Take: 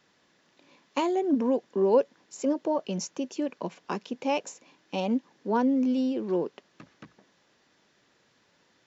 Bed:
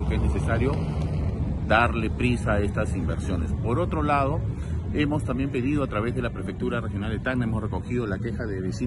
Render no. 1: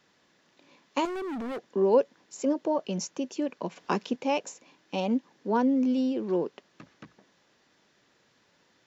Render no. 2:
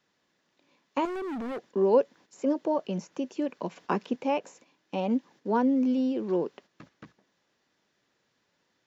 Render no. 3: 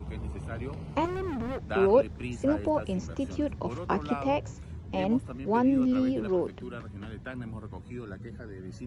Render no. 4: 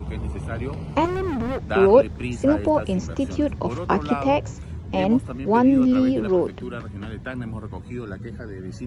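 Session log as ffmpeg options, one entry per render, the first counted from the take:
-filter_complex "[0:a]asettb=1/sr,asplit=3[s0][s1][s2];[s0]atrim=end=1.054[s3];[s1]atrim=start=1.05:end=1.7,asetpts=PTS-STARTPTS,afade=t=in:d=0.004:c=qsin,afade=t=out:st=0.646:d=0.004:c=qsin,volume=42.2,asoftclip=hard,volume=0.0237[s4];[s2]atrim=start=1.696[s5];[s3][s4]acrossfade=d=0.004:c1=hsin:c2=qsin[s6];[s6][s5]acrossfade=d=0.004:c1=qsin:c2=hsin,asplit=3[s7][s8][s9];[s7]atrim=end=3.762[s10];[s8]atrim=start=3.758:end=4.162,asetpts=PTS-STARTPTS,volume=1.68[s11];[s9]atrim=start=4.158[s12];[s10][s11]acrossfade=d=0.004:c1=hsin:c2=hsin[s13];[s13][s12]acrossfade=d=0.004:c1=hsin:c2=hsin"
-filter_complex "[0:a]agate=range=0.398:threshold=0.00251:ratio=16:detection=peak,acrossover=split=2600[s0][s1];[s1]acompressor=threshold=0.00282:ratio=4:attack=1:release=60[s2];[s0][s2]amix=inputs=2:normalize=0"
-filter_complex "[1:a]volume=0.224[s0];[0:a][s0]amix=inputs=2:normalize=0"
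-af "volume=2.37"

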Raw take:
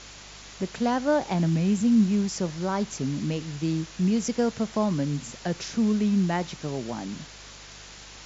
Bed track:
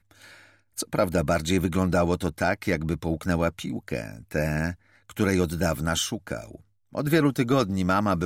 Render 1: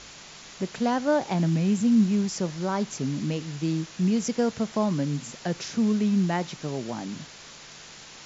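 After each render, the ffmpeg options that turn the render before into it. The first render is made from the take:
-af "bandreject=f=50:t=h:w=4,bandreject=f=100:t=h:w=4"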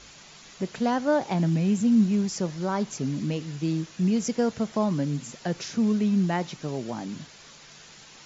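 -af "afftdn=nr=6:nf=-46"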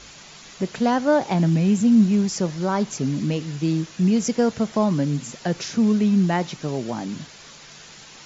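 -af "acontrast=22"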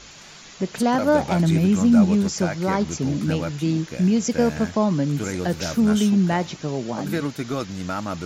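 -filter_complex "[1:a]volume=0.562[s0];[0:a][s0]amix=inputs=2:normalize=0"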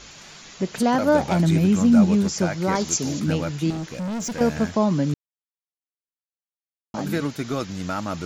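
-filter_complex "[0:a]asettb=1/sr,asplit=3[s0][s1][s2];[s0]atrim=end=2.754[s3];[s1]atrim=start=2.75:end=3.2,asetpts=PTS-STARTPTS,afade=t=in:d=0.004:c=qsin,afade=t=out:st=0.446:d=0.004:c=qsin,bass=f=250:g=-6,treble=f=4000:g=12[s4];[s2]atrim=start=3.196[s5];[s3][s4]acrossfade=d=0.004:c1=hsin:c2=qsin[s6];[s6][s5]acrossfade=d=0.004:c1=qsin:c2=hsin,asettb=1/sr,asplit=3[s7][s8][s9];[s7]atrim=end=3.704[s10];[s8]atrim=start=3.7:end=4.41,asetpts=PTS-STARTPTS,afade=t=in:d=0.004:c=qsin,afade=t=out:st=0.706:d=0.004:c=qsin,volume=20,asoftclip=hard,volume=0.0501[s11];[s9]atrim=start=4.406[s12];[s10][s11]acrossfade=d=0.004:c1=hsin:c2=qsin[s13];[s13][s12]acrossfade=d=0.004:c1=qsin:c2=hsin,asplit=3[s14][s15][s16];[s14]atrim=end=5.14,asetpts=PTS-STARTPTS,afade=t=out:st=5.136:d=0.004:c=hsin[s17];[s15]atrim=start=5.14:end=6.94,asetpts=PTS-STARTPTS,volume=0[s18];[s16]atrim=start=6.94,asetpts=PTS-STARTPTS,afade=t=in:d=0.004:c=hsin[s19];[s17][s18][s19]concat=n=3:v=0:a=1"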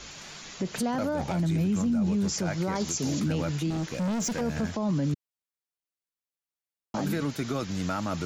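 -filter_complex "[0:a]acrossover=split=170[s0][s1];[s1]acompressor=threshold=0.0562:ratio=2.5[s2];[s0][s2]amix=inputs=2:normalize=0,alimiter=limit=0.0944:level=0:latency=1:release=12"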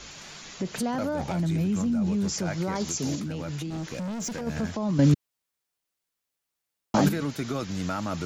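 -filter_complex "[0:a]asettb=1/sr,asplit=3[s0][s1][s2];[s0]atrim=end=3.154[s3];[s1]atrim=start=3.15:end=4.47,asetpts=PTS-STARTPTS,afade=t=in:d=0.004:c=qsin,afade=t=out:st=1.316:d=0.004:c=qsin,acompressor=threshold=0.0355:ratio=6:attack=3.2:release=140:knee=1:detection=peak[s4];[s2]atrim=start=4.466[s5];[s3][s4]acrossfade=d=0.004:c1=hsin:c2=qsin[s6];[s6][s5]acrossfade=d=0.004:c1=qsin:c2=hsin,asplit=3[s7][s8][s9];[s7]atrim=end=4.992[s10];[s8]atrim=start=4.988:end=7.092,asetpts=PTS-STARTPTS,volume=2.82[s11];[s9]atrim=start=7.088[s12];[s10][s11]acrossfade=d=0.004:c1=hsin:c2=hsin[s13];[s13][s12]acrossfade=d=0.004:c1=hsin:c2=hsin"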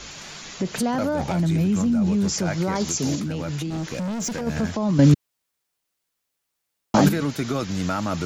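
-af "volume=1.78"

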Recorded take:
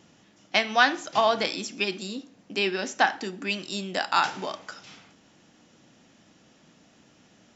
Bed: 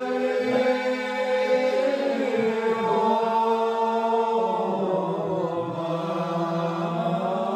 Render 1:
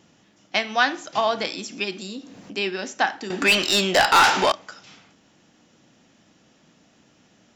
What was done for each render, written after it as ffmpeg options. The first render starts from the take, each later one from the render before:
-filter_complex "[0:a]asettb=1/sr,asplit=3[s0][s1][s2];[s0]atrim=end=1.594[s3];[s1]atrim=start=1.59:end=2.53,asetpts=PTS-STARTPTS,afade=t=in:d=0.004:c=qsin,afade=t=out:st=0.936:d=0.004:c=qsin,acompressor=mode=upward:threshold=0.0282:ratio=2.5:attack=3.2:release=140:knee=2.83:detection=peak[s4];[s2]atrim=start=2.526[s5];[s3][s4]acrossfade=d=0.004:c1=hsin:c2=qsin[s6];[s6][s5]acrossfade=d=0.004:c1=qsin:c2=hsin,asettb=1/sr,asplit=3[s7][s8][s9];[s7]atrim=end=3.304[s10];[s8]atrim=start=3.3:end=4.52,asetpts=PTS-STARTPTS,afade=t=in:d=0.004:c=qsin,afade=t=out:st=1.216:d=0.004:c=qsin,asplit=2[s11][s12];[s12]highpass=f=720:p=1,volume=20,asoftclip=type=tanh:threshold=0.447[s13];[s11][s13]amix=inputs=2:normalize=0,lowpass=f=6500:p=1,volume=0.501[s14];[s9]atrim=start=4.516[s15];[s10][s14]acrossfade=d=0.004:c1=hsin:c2=qsin[s16];[s16][s15]acrossfade=d=0.004:c1=qsin:c2=hsin"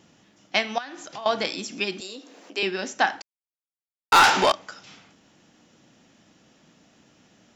-filter_complex "[0:a]asettb=1/sr,asplit=3[s0][s1][s2];[s0]atrim=end=0.784[s3];[s1]atrim=start=0.78:end=1.26,asetpts=PTS-STARTPTS,afade=t=in:d=0.004:c=qsin,afade=t=out:st=0.476:d=0.004:c=qsin,acompressor=threshold=0.0158:ratio=4:attack=3.2:release=140:knee=1:detection=peak[s4];[s2]atrim=start=1.256[s5];[s3][s4]acrossfade=d=0.004:c1=hsin:c2=qsin[s6];[s6][s5]acrossfade=d=0.004:c1=qsin:c2=hsin,asettb=1/sr,asplit=3[s7][s8][s9];[s7]atrim=end=2.004[s10];[s8]atrim=start=2:end=2.63,asetpts=PTS-STARTPTS,afade=t=in:d=0.004:c=qsin,afade=t=out:st=0.626:d=0.004:c=qsin,highpass=f=330:w=0.5412,highpass=f=330:w=1.3066[s11];[s9]atrim=start=2.626[s12];[s10][s11]acrossfade=d=0.004:c1=hsin:c2=qsin[s13];[s13][s12]acrossfade=d=0.004:c1=qsin:c2=hsin,asplit=3[s14][s15][s16];[s14]atrim=end=3.22,asetpts=PTS-STARTPTS,afade=t=out:st=3.216:d=0.004:c=hsin[s17];[s15]atrim=start=3.22:end=4.12,asetpts=PTS-STARTPTS,volume=0[s18];[s16]atrim=start=4.12,asetpts=PTS-STARTPTS,afade=t=in:d=0.004:c=hsin[s19];[s17][s18][s19]concat=n=3:v=0:a=1"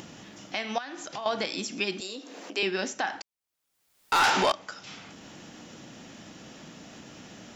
-af "alimiter=limit=0.15:level=0:latency=1:release=120,acompressor=mode=upward:threshold=0.0178:ratio=2.5"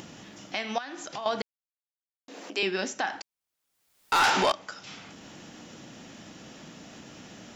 -filter_complex "[0:a]asplit=3[s0][s1][s2];[s0]atrim=end=1.42,asetpts=PTS-STARTPTS,afade=t=out:st=1.416:d=0.004:c=hsin[s3];[s1]atrim=start=1.42:end=2.28,asetpts=PTS-STARTPTS,volume=0[s4];[s2]atrim=start=2.28,asetpts=PTS-STARTPTS,afade=t=in:d=0.004:c=hsin[s5];[s3][s4][s5]concat=n=3:v=0:a=1"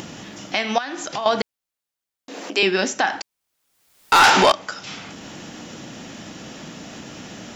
-af "volume=2.99"

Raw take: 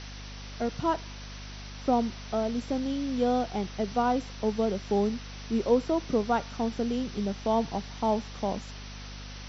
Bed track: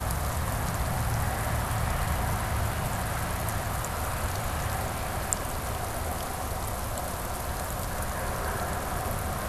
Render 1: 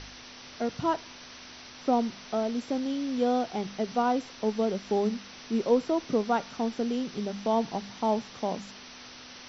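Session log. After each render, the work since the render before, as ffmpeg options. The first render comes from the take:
-af "bandreject=f=50:t=h:w=4,bandreject=f=100:t=h:w=4,bandreject=f=150:t=h:w=4,bandreject=f=200:t=h:w=4"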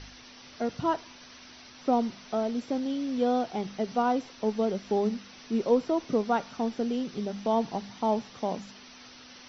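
-af "afftdn=nr=6:nf=-47"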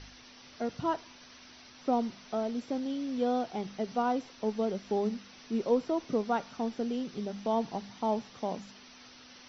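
-af "volume=0.668"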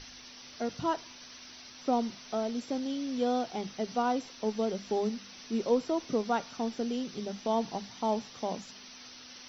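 -af "highshelf=f=4500:g=11,bandreject=f=50:t=h:w=6,bandreject=f=100:t=h:w=6,bandreject=f=150:t=h:w=6,bandreject=f=200:t=h:w=6"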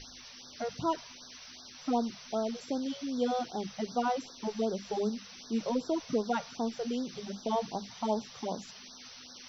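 -af "afftfilt=real='re*(1-between(b*sr/1024,260*pow(2500/260,0.5+0.5*sin(2*PI*2.6*pts/sr))/1.41,260*pow(2500/260,0.5+0.5*sin(2*PI*2.6*pts/sr))*1.41))':imag='im*(1-between(b*sr/1024,260*pow(2500/260,0.5+0.5*sin(2*PI*2.6*pts/sr))/1.41,260*pow(2500/260,0.5+0.5*sin(2*PI*2.6*pts/sr))*1.41))':win_size=1024:overlap=0.75"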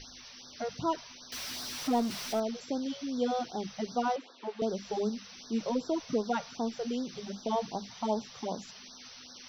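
-filter_complex "[0:a]asettb=1/sr,asplit=3[s0][s1][s2];[s0]atrim=end=1.324[s3];[s1]atrim=start=1.32:end=2.4,asetpts=PTS-STARTPTS,afade=t=in:d=0.004:c=qsin,afade=t=out:st=1.076:d=0.004:c=qsin,aeval=exprs='val(0)+0.5*0.0158*sgn(val(0))':c=same[s4];[s2]atrim=start=2.396[s5];[s3][s4]acrossfade=d=0.004:c1=hsin:c2=qsin[s6];[s6][s5]acrossfade=d=0.004:c1=qsin:c2=hsin,asettb=1/sr,asplit=3[s7][s8][s9];[s7]atrim=end=4.164[s10];[s8]atrim=start=4.16:end=4.62,asetpts=PTS-STARTPTS,afade=t=in:d=0.004:c=qsin,afade=t=out:st=0.456:d=0.004:c=qsin,acrossover=split=280 3800:gain=0.0631 1 0.0708[s11][s12][s13];[s11][s12][s13]amix=inputs=3:normalize=0[s14];[s9]atrim=start=4.616[s15];[s10][s14]acrossfade=d=0.004:c1=hsin:c2=qsin[s16];[s16][s15]acrossfade=d=0.004:c1=qsin:c2=hsin"

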